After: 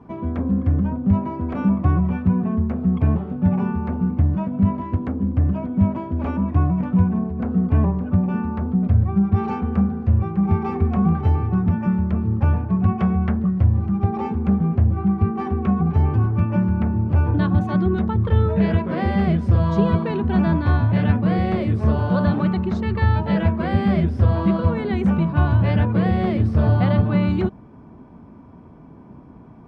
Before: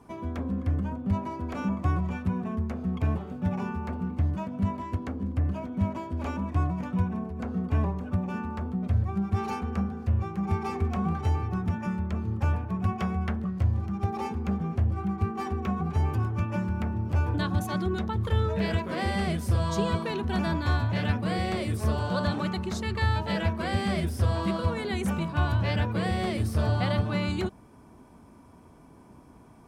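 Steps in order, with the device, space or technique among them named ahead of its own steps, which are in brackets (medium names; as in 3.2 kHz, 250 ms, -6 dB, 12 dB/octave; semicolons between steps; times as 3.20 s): phone in a pocket (low-pass 3.7 kHz 12 dB/octave; peaking EQ 170 Hz +5.5 dB 1.5 oct; treble shelf 2.4 kHz -10 dB); trim +6 dB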